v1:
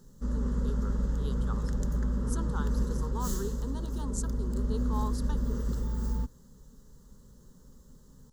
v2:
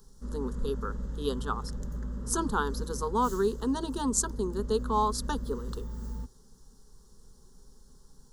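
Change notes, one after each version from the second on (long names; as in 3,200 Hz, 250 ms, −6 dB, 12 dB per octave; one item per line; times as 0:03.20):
speech +11.5 dB
background −6.5 dB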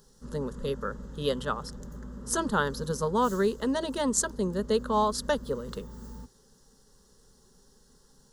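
speech: remove phaser with its sweep stopped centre 580 Hz, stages 6
master: add low-shelf EQ 92 Hz −11 dB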